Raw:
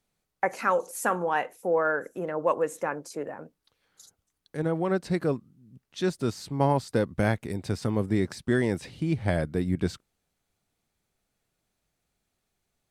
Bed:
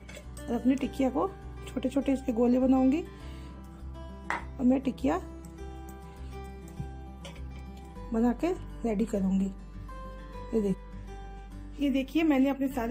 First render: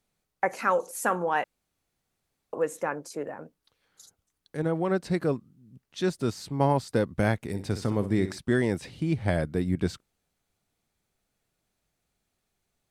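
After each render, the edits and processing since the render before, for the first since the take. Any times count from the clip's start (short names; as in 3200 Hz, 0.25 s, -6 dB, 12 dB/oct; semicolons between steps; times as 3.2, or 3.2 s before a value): 1.44–2.53 room tone; 7.41–8.39 flutter echo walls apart 10.7 m, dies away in 0.31 s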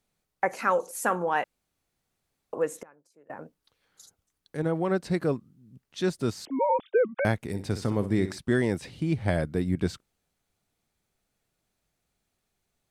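2.8–3.3 flipped gate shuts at -33 dBFS, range -25 dB; 6.45–7.25 sine-wave speech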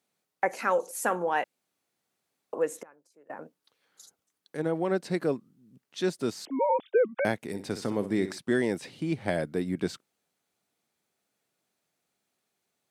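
HPF 210 Hz 12 dB/oct; dynamic EQ 1200 Hz, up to -4 dB, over -42 dBFS, Q 2.4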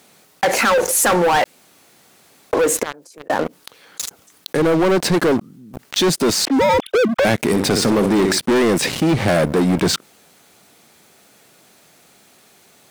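sample leveller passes 5; fast leveller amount 50%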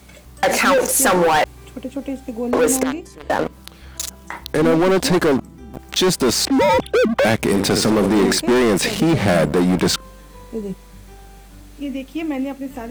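add bed +1 dB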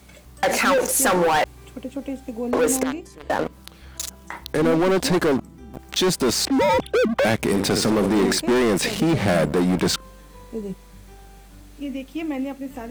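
gain -3.5 dB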